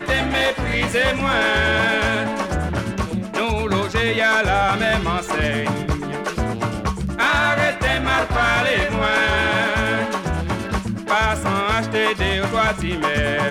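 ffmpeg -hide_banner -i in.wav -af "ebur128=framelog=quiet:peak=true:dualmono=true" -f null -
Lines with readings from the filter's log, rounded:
Integrated loudness:
  I:         -16.4 LUFS
  Threshold: -26.4 LUFS
Loudness range:
  LRA:         2.2 LU
  Threshold: -36.5 LUFS
  LRA low:   -17.4 LUFS
  LRA high:  -15.1 LUFS
True peak:
  Peak:       -7.9 dBFS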